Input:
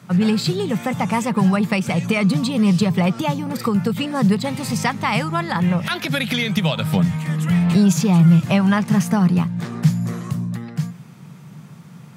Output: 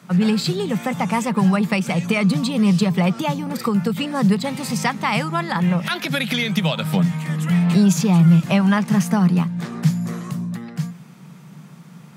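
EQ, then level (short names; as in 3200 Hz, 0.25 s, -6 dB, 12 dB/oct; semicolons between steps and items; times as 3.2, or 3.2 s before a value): Chebyshev high-pass 160 Hz, order 3; 0.0 dB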